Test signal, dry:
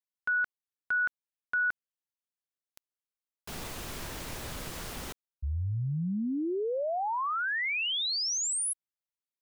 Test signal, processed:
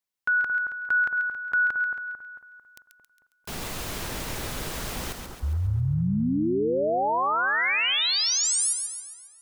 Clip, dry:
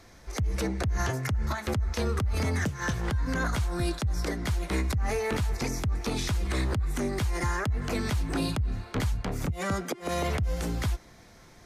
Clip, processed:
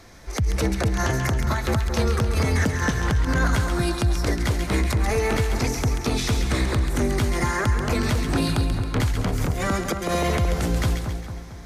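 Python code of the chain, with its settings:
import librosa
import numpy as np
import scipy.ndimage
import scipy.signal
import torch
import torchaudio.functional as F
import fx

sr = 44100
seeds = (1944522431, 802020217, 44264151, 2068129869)

y = fx.echo_split(x, sr, split_hz=1500.0, low_ms=223, high_ms=136, feedback_pct=52, wet_db=-6.0)
y = y * 10.0 ** (5.5 / 20.0)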